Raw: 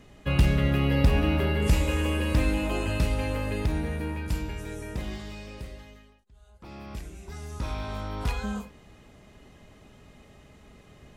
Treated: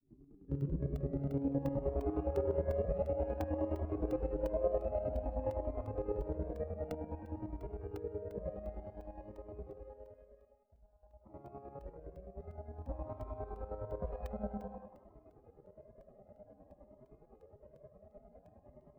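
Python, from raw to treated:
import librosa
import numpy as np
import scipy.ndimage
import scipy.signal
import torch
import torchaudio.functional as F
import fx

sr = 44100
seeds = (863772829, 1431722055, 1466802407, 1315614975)

p1 = fx.granulator(x, sr, seeds[0], grain_ms=188.0, per_s=10.0, spray_ms=35.0, spread_st=0)
p2 = fx.doubler(p1, sr, ms=36.0, db=-5.0)
p3 = 10.0 ** (-25.5 / 20.0) * np.tanh(p2 / 10.0 ** (-25.5 / 20.0))
p4 = fx.stretch_vocoder(p3, sr, factor=1.7)
p5 = fx.peak_eq(p4, sr, hz=3300.0, db=-5.5, octaves=0.63)
p6 = fx.filter_sweep_lowpass(p5, sr, from_hz=280.0, to_hz=600.0, start_s=0.39, end_s=2.18, q=3.5)
p7 = fx.low_shelf(p6, sr, hz=78.0, db=-9.5)
p8 = fx.chopper(p7, sr, hz=9.7, depth_pct=65, duty_pct=35)
p9 = p8 + fx.echo_thinned(p8, sr, ms=182, feedback_pct=42, hz=520.0, wet_db=-6, dry=0)
p10 = fx.buffer_crackle(p9, sr, first_s=0.61, period_s=0.35, block=64, kind='zero')
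p11 = fx.comb_cascade(p10, sr, direction='rising', hz=0.53)
y = p11 * 10.0 ** (1.0 / 20.0)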